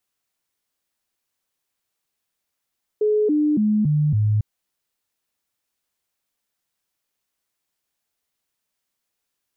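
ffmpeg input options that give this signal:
-f lavfi -i "aevalsrc='0.168*clip(min(mod(t,0.28),0.28-mod(t,0.28))/0.005,0,1)*sin(2*PI*424*pow(2,-floor(t/0.28)/2)*mod(t,0.28))':d=1.4:s=44100"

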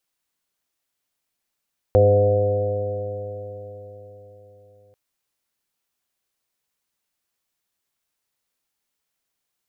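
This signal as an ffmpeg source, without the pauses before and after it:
-f lavfi -i "aevalsrc='0.158*pow(10,-3*t/4.28)*sin(2*PI*100.08*t)+0.0316*pow(10,-3*t/4.28)*sin(2*PI*200.68*t)+0.0316*pow(10,-3*t/4.28)*sin(2*PI*302.29*t)+0.0708*pow(10,-3*t/4.28)*sin(2*PI*405.4*t)+0.251*pow(10,-3*t/4.28)*sin(2*PI*510.51*t)+0.0531*pow(10,-3*t/4.28)*sin(2*PI*618.09*t)+0.0473*pow(10,-3*t/4.28)*sin(2*PI*728.57*t)':d=2.99:s=44100"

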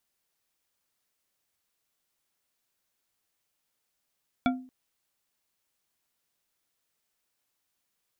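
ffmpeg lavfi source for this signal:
-f lavfi -i "aevalsrc='0.1*pow(10,-3*t/0.43)*sin(2*PI*256*t)+0.0708*pow(10,-3*t/0.211)*sin(2*PI*705.8*t)+0.0501*pow(10,-3*t/0.132)*sin(2*PI*1383.4*t)+0.0355*pow(10,-3*t/0.093)*sin(2*PI*2286.8*t)+0.0251*pow(10,-3*t/0.07)*sin(2*PI*3415*t)':d=0.23:s=44100"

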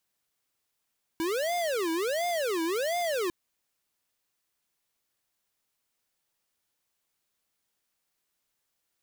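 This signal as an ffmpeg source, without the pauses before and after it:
-f lavfi -i "aevalsrc='0.0355*(2*lt(mod((515*t-191/(2*PI*1.4)*sin(2*PI*1.4*t)),1),0.5)-1)':d=2.1:s=44100"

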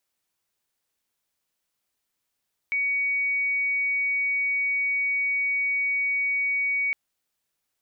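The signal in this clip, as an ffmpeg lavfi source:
-f lavfi -i "sine=f=2250:d=4.21:r=44100,volume=-3.94dB"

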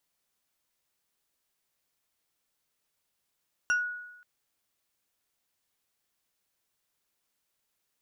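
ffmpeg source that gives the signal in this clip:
-f lavfi -i "aevalsrc='0.0891*pow(10,-3*t/0.96)*sin(2*PI*1460*t+0.55*pow(10,-3*t/0.22)*sin(2*PI*2.89*1460*t))':d=0.53:s=44100"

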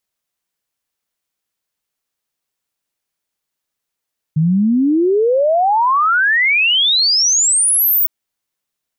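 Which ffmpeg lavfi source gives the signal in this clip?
-f lavfi -i "aevalsrc='0.299*clip(min(t,3.71-t)/0.01,0,1)*sin(2*PI*150*3.71/log(16000/150)*(exp(log(16000/150)*t/3.71)-1))':d=3.71:s=44100"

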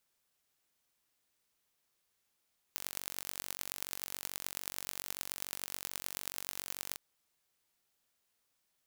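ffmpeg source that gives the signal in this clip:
-f lavfi -i "aevalsrc='0.355*eq(mod(n,940),0)*(0.5+0.5*eq(mod(n,4700),0))':d=4.2:s=44100"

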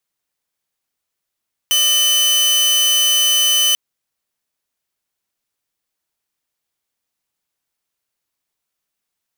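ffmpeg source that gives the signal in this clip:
-f lavfi -i "aevalsrc='0.335*(2*mod(3020*t,1)-1)':d=2.04:s=44100"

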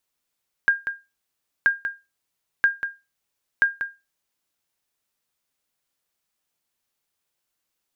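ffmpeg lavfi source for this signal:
-f lavfi -i "aevalsrc='0.335*(sin(2*PI*1610*mod(t,0.98))*exp(-6.91*mod(t,0.98)/0.24)+0.335*sin(2*PI*1610*max(mod(t,0.98)-0.19,0))*exp(-6.91*max(mod(t,0.98)-0.19,0)/0.24))':d=3.92:s=44100"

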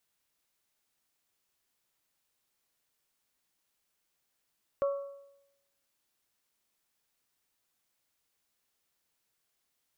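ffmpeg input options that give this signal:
-f lavfi -i "aevalsrc='0.0631*pow(10,-3*t/0.86)*sin(2*PI*559*t)+0.0188*pow(10,-3*t/0.699)*sin(2*PI*1118*t)+0.00562*pow(10,-3*t/0.661)*sin(2*PI*1341.6*t)':d=1.55:s=44100"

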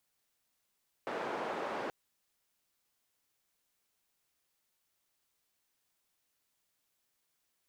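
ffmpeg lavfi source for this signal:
-f lavfi -i "anoisesrc=c=white:d=0.83:r=44100:seed=1,highpass=f=320,lowpass=f=910,volume=-18dB"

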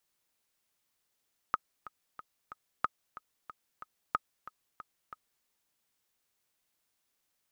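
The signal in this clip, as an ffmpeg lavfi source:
-f lavfi -i "aevalsrc='pow(10,(-14-17*gte(mod(t,4*60/184),60/184))/20)*sin(2*PI*1260*mod(t,60/184))*exp(-6.91*mod(t,60/184)/0.03)':d=3.91:s=44100"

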